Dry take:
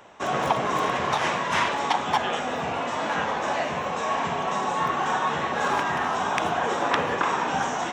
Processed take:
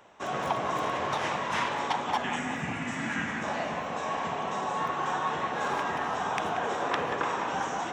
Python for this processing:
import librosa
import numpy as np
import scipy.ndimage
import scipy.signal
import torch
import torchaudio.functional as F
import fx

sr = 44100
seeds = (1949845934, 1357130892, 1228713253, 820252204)

y = fx.graphic_eq(x, sr, hz=(125, 250, 500, 1000, 2000, 4000, 8000), db=(8, 9, -11, -7, 10, -7, 8), at=(2.24, 3.43))
y = fx.echo_filtered(y, sr, ms=183, feedback_pct=72, hz=2000.0, wet_db=-6.5)
y = y * librosa.db_to_amplitude(-6.5)